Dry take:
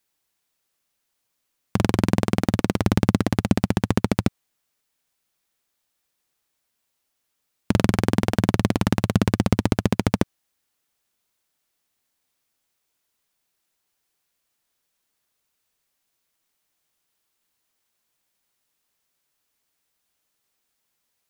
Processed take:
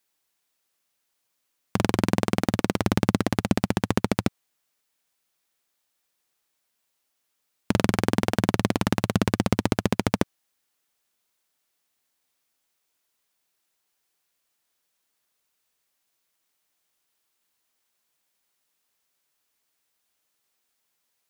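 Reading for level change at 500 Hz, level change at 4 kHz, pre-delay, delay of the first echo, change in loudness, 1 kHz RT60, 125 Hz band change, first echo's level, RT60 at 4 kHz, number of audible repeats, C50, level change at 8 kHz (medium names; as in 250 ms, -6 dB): -1.0 dB, 0.0 dB, no reverb, no echo, -2.5 dB, no reverb, -5.0 dB, no echo, no reverb, no echo, no reverb, 0.0 dB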